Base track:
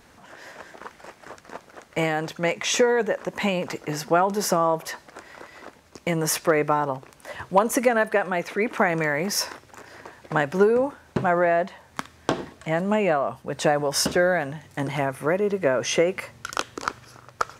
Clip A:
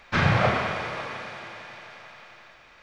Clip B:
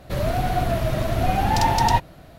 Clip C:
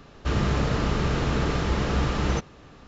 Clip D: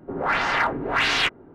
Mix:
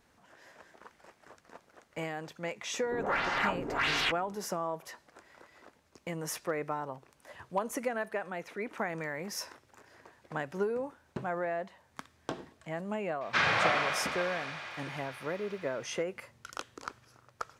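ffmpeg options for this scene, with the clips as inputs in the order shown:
-filter_complex "[0:a]volume=-13.5dB[a];[1:a]highpass=f=1.1k:p=1[b];[4:a]atrim=end=1.54,asetpts=PTS-STARTPTS,volume=-8.5dB,afade=t=in:d=0.004:c=hsin,afade=t=out:st=1.536:d=0.004:c=hsin,adelay=2830[c];[b]atrim=end=2.82,asetpts=PTS-STARTPTS,volume=-0.5dB,afade=t=in:d=0.004:c=hsin,afade=t=out:st=2.816:d=0.004:c=hsin,adelay=13210[d];[a][c][d]amix=inputs=3:normalize=0"

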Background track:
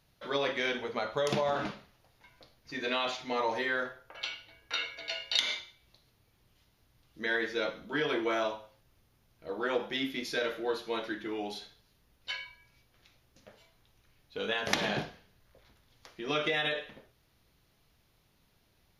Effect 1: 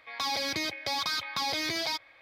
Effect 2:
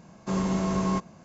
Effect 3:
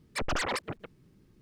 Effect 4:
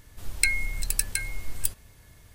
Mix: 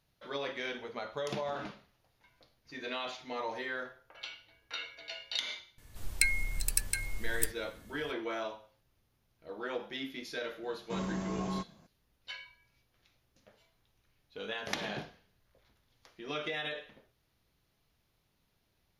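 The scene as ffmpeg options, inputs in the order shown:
-filter_complex "[0:a]volume=-6.5dB[a];[4:a]atrim=end=2.34,asetpts=PTS-STARTPTS,volume=-4.5dB,afade=t=in:d=0.004:c=hsin,afade=t=out:st=2.336:d=0.004:c=hsin,adelay=5780[b];[2:a]atrim=end=1.24,asetpts=PTS-STARTPTS,volume=-10dB,afade=t=in:d=0.004:c=hsin,afade=t=out:st=1.236:d=0.004:c=hsin,adelay=10630[c];[a][b][c]amix=inputs=3:normalize=0"

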